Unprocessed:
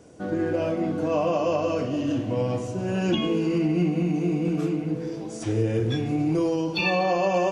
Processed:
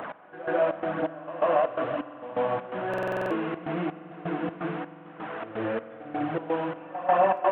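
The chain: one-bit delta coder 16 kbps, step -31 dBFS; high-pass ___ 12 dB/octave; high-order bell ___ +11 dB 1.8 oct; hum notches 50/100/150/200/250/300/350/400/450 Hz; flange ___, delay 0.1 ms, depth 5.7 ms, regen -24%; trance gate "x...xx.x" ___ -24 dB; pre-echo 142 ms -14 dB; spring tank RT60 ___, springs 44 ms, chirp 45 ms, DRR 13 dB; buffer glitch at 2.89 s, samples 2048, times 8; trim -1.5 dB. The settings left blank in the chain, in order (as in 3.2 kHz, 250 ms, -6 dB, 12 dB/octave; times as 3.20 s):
160 Hz, 1 kHz, 0.97 Hz, 127 bpm, 3.9 s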